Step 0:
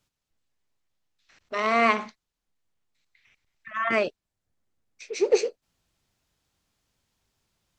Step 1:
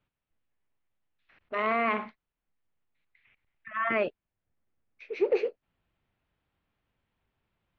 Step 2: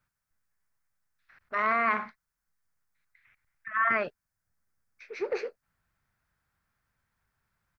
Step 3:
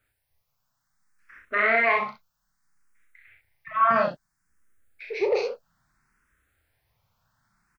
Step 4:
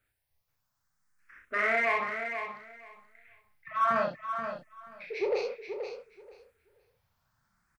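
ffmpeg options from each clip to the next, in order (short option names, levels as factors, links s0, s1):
-af "lowpass=f=2900:w=0.5412,lowpass=f=2900:w=1.3066,alimiter=limit=0.188:level=0:latency=1:release=16,volume=0.794"
-af "firequalizer=gain_entry='entry(150,0);entry(300,-8);entry(1500,8);entry(2900,-7);entry(5000,8)':delay=0.05:min_phase=1"
-filter_complex "[0:a]aecho=1:1:35|64:0.631|0.531,asplit=2[s0][s1];[s1]afreqshift=0.61[s2];[s0][s2]amix=inputs=2:normalize=1,volume=2.66"
-filter_complex "[0:a]asplit=2[s0][s1];[s1]asoftclip=type=tanh:threshold=0.0501,volume=0.335[s2];[s0][s2]amix=inputs=2:normalize=0,aecho=1:1:480|960|1440:0.398|0.0677|0.0115,volume=0.447"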